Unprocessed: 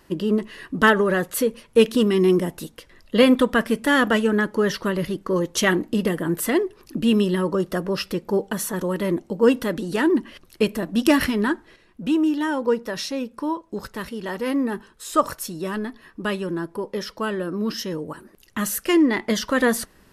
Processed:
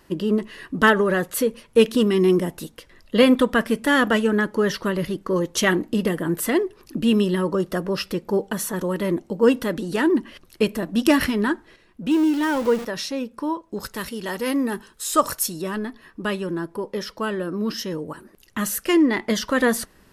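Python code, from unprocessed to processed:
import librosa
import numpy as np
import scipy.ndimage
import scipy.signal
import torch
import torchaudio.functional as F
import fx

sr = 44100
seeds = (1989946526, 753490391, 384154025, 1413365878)

y = fx.zero_step(x, sr, step_db=-28.0, at=(12.11, 12.85))
y = fx.high_shelf(y, sr, hz=3700.0, db=9.5, at=(13.8, 15.62))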